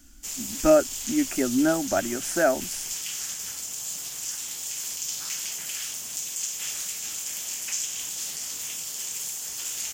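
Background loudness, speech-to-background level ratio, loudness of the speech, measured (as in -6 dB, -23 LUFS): -30.0 LUFS, 5.5 dB, -24.5 LUFS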